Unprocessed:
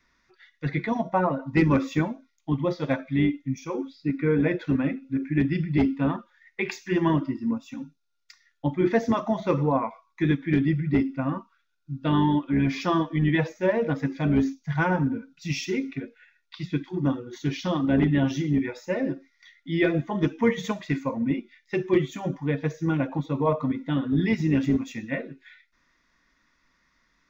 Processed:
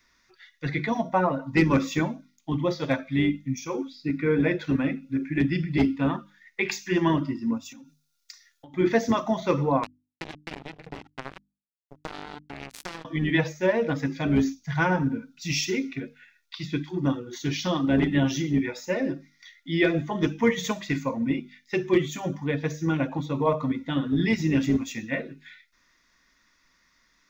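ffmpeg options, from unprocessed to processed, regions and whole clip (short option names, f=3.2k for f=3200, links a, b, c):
-filter_complex "[0:a]asettb=1/sr,asplit=3[a][b][c];[a]atrim=end=7.654[d];[b]atrim=start=7.65:end=8.74,asetpts=PTS-STARTPTS,afade=t=in:d=0.004:c=qsin,afade=t=out:st=1.086:d=0.004:c=qsin,bass=f=250:g=-2,treble=f=4k:g=6,acompressor=threshold=-43dB:ratio=12:attack=3.2:release=140:knee=1:detection=peak[e];[c]atrim=start=8.736[f];[d][e]acrossfade=d=0.004:c1=hsin:c2=qsin[g];[g][f]acrossfade=d=0.004:c1=qsin:c2=hsin,asettb=1/sr,asplit=3[h][i][j];[h]atrim=end=9.834[k];[i]atrim=start=9.83:end=13.05,asetpts=PTS-STARTPTS,afade=t=in:d=0.004:c=qsin,afade=t=out:st=3.216:d=0.004:c=qsin,acompressor=threshold=-27dB:ratio=10:attack=3.2:release=140:knee=1:detection=peak,acrusher=bits=3:mix=0:aa=0.5[l];[j]atrim=start=13.046[m];[k][l]acrossfade=d=0.004:c1=hsin:c2=qsin[n];[n][m]acrossfade=d=0.004:c1=qsin:c2=hsin,highshelf=f=3.6k:g=10,bandreject=f=50:t=h:w=6,bandreject=f=100:t=h:w=6,bandreject=f=150:t=h:w=6,bandreject=f=200:t=h:w=6,bandreject=f=250:t=h:w=6,bandreject=f=300:t=h:w=6"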